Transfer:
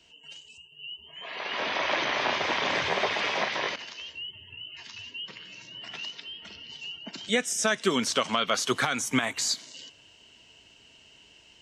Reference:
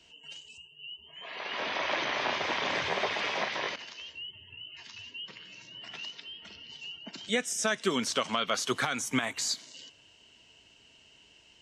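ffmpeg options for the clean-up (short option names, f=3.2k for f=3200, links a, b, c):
-af "asetnsamples=n=441:p=0,asendcmd='0.72 volume volume -3.5dB',volume=0dB"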